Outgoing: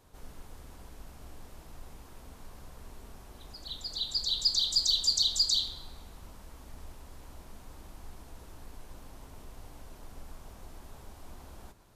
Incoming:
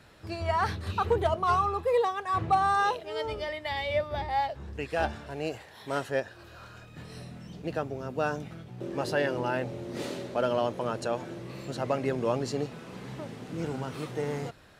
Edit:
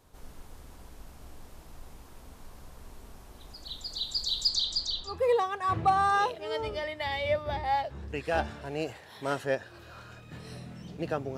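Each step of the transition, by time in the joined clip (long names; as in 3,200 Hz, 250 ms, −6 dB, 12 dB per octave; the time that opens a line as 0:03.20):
outgoing
0:04.48–0:05.20: low-pass filter 8,400 Hz → 1,700 Hz
0:05.12: continue with incoming from 0:01.77, crossfade 0.16 s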